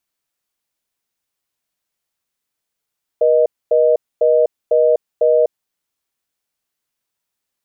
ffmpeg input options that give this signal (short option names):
-f lavfi -i "aevalsrc='0.237*(sin(2*PI*480*t)+sin(2*PI*620*t))*clip(min(mod(t,0.5),0.25-mod(t,0.5))/0.005,0,1)':d=2.31:s=44100"